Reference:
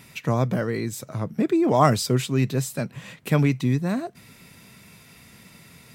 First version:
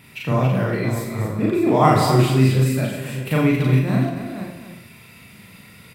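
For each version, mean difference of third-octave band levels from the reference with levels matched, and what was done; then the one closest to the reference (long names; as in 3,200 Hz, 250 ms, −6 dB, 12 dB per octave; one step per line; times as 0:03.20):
7.0 dB: delay that plays each chunk backwards 319 ms, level −8.5 dB
graphic EQ with 15 bands 100 Hz +4 dB, 2,500 Hz +4 dB, 6,300 Hz −8 dB
on a send: loudspeakers that aren't time-aligned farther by 13 metres 0 dB, 94 metres −7 dB
on the sum: four-comb reverb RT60 0.65 s, combs from 31 ms, DRR 2.5 dB
level −2 dB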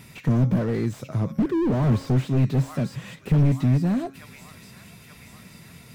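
4.0 dB: low-shelf EQ 270 Hz +6 dB
hum removal 272.3 Hz, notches 26
on a send: delay with a high-pass on its return 882 ms, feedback 55%, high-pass 1,400 Hz, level −16 dB
on the sum: slew-rate limiting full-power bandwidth 32 Hz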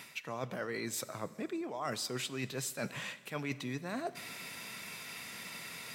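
11.5 dB: high-pass filter 880 Hz 6 dB per octave
high-shelf EQ 6,900 Hz −5.5 dB
reversed playback
downward compressor 12 to 1, threshold −43 dBFS, peak gain reduction 27 dB
reversed playback
four-comb reverb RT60 1.7 s, combs from 31 ms, DRR 16 dB
level +8 dB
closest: second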